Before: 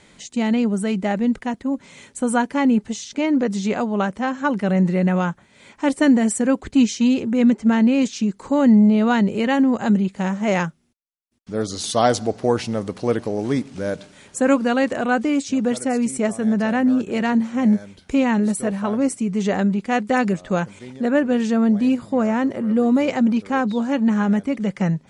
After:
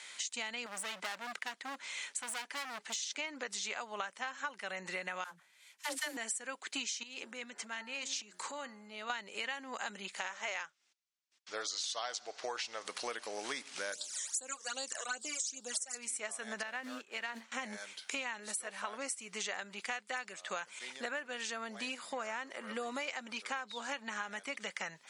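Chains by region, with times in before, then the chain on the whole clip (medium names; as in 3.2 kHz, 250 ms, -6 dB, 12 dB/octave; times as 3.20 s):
0.66–3.03 s: treble shelf 8.3 kHz -8.5 dB + hard clipper -25 dBFS
5.24–6.17 s: CVSD coder 64 kbps + phase dispersion lows, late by 78 ms, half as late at 450 Hz + three bands expanded up and down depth 100%
7.03–9.10 s: de-hum 90.14 Hz, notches 20 + compression 12:1, threshold -27 dBFS
10.19–12.85 s: low-pass 7.2 kHz 24 dB/octave + peaking EQ 200 Hz -10 dB 0.63 oct
13.92–15.95 s: high-pass 160 Hz + resonant high shelf 4.1 kHz +11.5 dB, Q 1.5 + phase shifter stages 12, 2.5 Hz, lowest notch 240–2100 Hz
16.63–17.52 s: companding laws mixed up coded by mu + distance through air 53 m + upward expansion 2.5:1, over -28 dBFS
whole clip: Bessel high-pass 1.8 kHz, order 2; compression 10:1, threshold -42 dBFS; trim +6 dB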